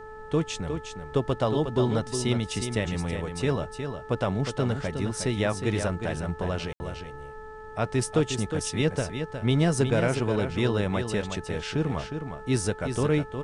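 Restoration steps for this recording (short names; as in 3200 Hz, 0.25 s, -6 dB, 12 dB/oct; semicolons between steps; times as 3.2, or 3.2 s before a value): de-hum 434.1 Hz, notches 4; room tone fill 6.73–6.8; noise print and reduce 30 dB; inverse comb 0.361 s -7.5 dB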